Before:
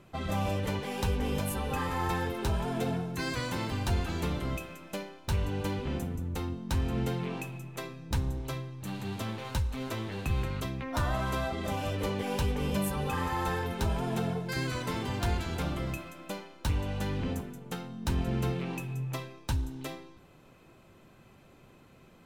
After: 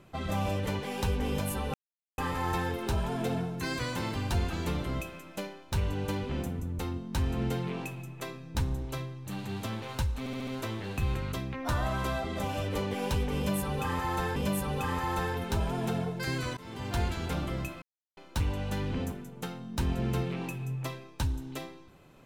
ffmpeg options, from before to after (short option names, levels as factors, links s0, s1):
-filter_complex "[0:a]asplit=10[s0][s1][s2][s3][s4][s5][s6][s7][s8][s9];[s0]atrim=end=1.74,asetpts=PTS-STARTPTS,afade=t=out:st=1.736:d=0.004:c=hsin,apad=pad_dur=0.44[s10];[s1]atrim=start=1.74:end=9.822,asetpts=PTS-STARTPTS,afade=t=in:d=0.004:c=hsin[s11];[s2]atrim=start=9.748:end=9.822[s12];[s3]atrim=start=9.748:end=9.822[s13];[s4]atrim=start=9.748:end=9.822[s14];[s5]atrim=start=9.748:end=13.642[s15];[s6]atrim=start=12.648:end=14.86,asetpts=PTS-STARTPTS,afade=t=out:st=2.208:d=0.004:c=hsin:silence=0.0749894[s16];[s7]atrim=start=14.86:end=16.11,asetpts=PTS-STARTPTS,afade=t=in:d=0.42:silence=0.0749894,afade=t=out:st=1.246:d=0.004:c=hsin[s17];[s8]atrim=start=16.11:end=16.46,asetpts=PTS-STARTPTS,volume=0[s18];[s9]atrim=start=16.46,asetpts=PTS-STARTPTS,afade=t=in:d=0.004:c=hsin[s19];[s10][s11]concat=n=2:v=0:a=1[s20];[s20][s12]acrossfade=d=0.004:c1=hsin:c2=hsin[s21];[s21][s13]acrossfade=d=0.004:c1=hsin:c2=hsin[s22];[s22][s14]acrossfade=d=0.004:c1=hsin:c2=hsin[s23];[s23][s15]acrossfade=d=0.004:c1=hsin:c2=hsin[s24];[s16][s17][s18][s19]concat=n=4:v=0:a=1[s25];[s24][s25]acrossfade=d=0.004:c1=hsin:c2=hsin"